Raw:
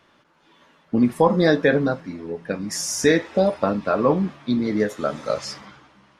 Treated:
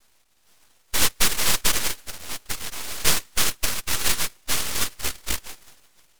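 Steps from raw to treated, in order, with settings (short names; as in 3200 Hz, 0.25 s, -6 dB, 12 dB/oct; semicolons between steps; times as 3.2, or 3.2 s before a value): de-hum 171.6 Hz, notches 27; noise vocoder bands 1; reverb removal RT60 0.5 s; full-wave rectifier; dynamic EQ 720 Hz, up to -5 dB, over -45 dBFS, Q 2.6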